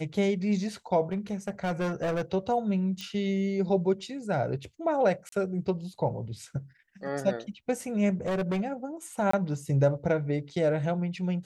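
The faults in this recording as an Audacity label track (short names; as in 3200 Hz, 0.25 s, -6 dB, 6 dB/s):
1.120000	2.220000	clipped -25.5 dBFS
3.010000	3.010000	pop -23 dBFS
5.290000	5.320000	gap 33 ms
8.250000	8.610000	clipped -25.5 dBFS
9.310000	9.330000	gap 24 ms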